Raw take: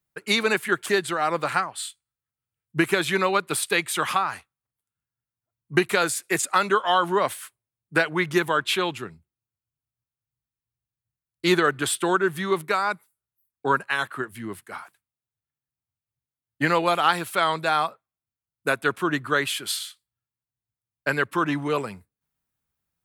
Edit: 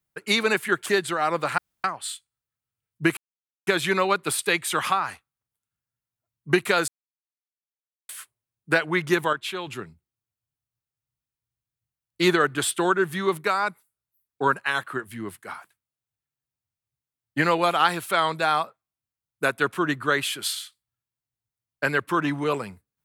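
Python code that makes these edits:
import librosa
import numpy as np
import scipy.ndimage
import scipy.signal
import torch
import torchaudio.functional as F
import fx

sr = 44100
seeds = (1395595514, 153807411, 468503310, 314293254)

y = fx.edit(x, sr, fx.insert_room_tone(at_s=1.58, length_s=0.26),
    fx.insert_silence(at_s=2.91, length_s=0.5),
    fx.silence(start_s=6.12, length_s=1.21),
    fx.clip_gain(start_s=8.57, length_s=0.34, db=-7.5), tone=tone)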